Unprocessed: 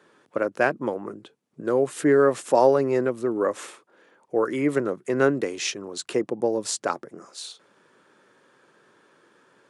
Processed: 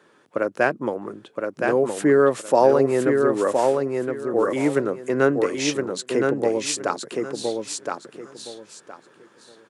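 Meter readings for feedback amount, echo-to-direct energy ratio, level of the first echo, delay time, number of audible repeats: 22%, −4.0 dB, −4.0 dB, 1,017 ms, 3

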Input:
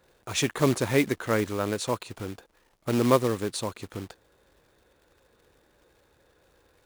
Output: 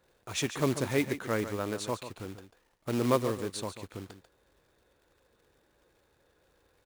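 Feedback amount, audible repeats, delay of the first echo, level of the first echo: repeats not evenly spaced, 1, 142 ms, −11.0 dB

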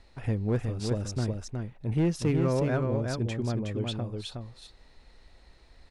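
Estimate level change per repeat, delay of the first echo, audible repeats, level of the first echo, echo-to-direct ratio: repeats not evenly spaced, 366 ms, 1, −4.5 dB, −4.5 dB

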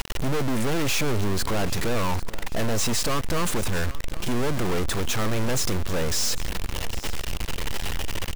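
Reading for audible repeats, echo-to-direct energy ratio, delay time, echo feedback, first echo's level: 2, −17.0 dB, 796 ms, 31%, −17.5 dB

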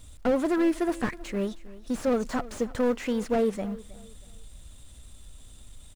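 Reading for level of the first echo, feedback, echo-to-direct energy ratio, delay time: −19.0 dB, 30%, −18.5 dB, 318 ms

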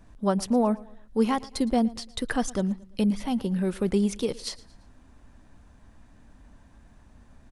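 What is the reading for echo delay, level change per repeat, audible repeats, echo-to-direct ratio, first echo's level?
114 ms, −8.0 dB, 2, −20.0 dB, −21.0 dB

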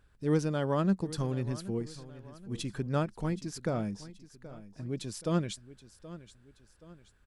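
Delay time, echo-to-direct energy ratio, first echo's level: 776 ms, −15.5 dB, −16.5 dB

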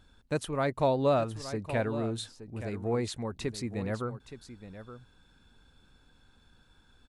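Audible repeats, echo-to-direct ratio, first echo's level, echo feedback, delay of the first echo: 1, −12.5 dB, −12.5 dB, repeats not evenly spaced, 870 ms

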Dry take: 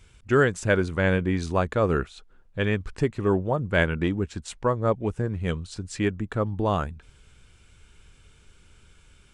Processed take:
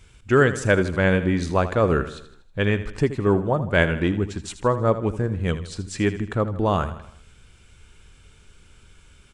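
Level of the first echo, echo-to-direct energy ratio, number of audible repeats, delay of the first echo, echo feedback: −13.0 dB, −11.5 dB, 4, 79 ms, 50%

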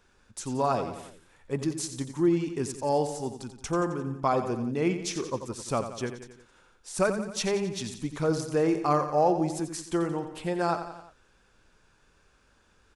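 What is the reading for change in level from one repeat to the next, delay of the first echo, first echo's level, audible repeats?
−5.0 dB, 88 ms, −10.0 dB, 4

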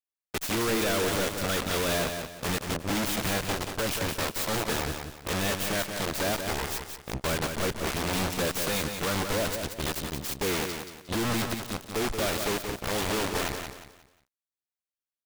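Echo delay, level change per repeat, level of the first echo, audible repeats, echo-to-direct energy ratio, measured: 179 ms, −9.5 dB, −6.5 dB, 3, −6.0 dB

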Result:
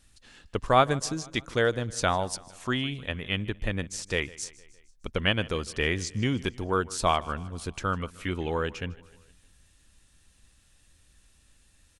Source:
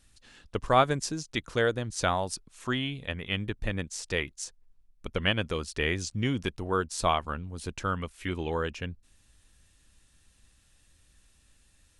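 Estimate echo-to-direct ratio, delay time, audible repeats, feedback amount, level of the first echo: −19.5 dB, 154 ms, 3, 56%, −21.0 dB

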